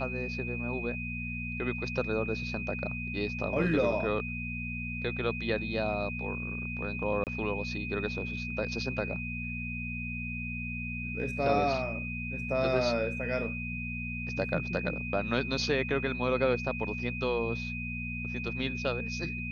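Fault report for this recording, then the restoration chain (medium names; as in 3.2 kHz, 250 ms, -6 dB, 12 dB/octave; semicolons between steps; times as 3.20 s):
hum 60 Hz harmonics 4 -38 dBFS
whine 2.5 kHz -37 dBFS
7.24–7.27 s: dropout 28 ms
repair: de-hum 60 Hz, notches 4; band-stop 2.5 kHz, Q 30; interpolate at 7.24 s, 28 ms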